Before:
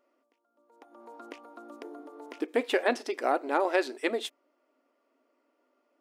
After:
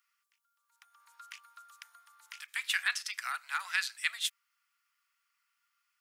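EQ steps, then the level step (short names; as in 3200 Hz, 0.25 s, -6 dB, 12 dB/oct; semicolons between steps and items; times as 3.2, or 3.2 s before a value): steep high-pass 1300 Hz 36 dB/oct; high shelf 4100 Hz +10.5 dB; 0.0 dB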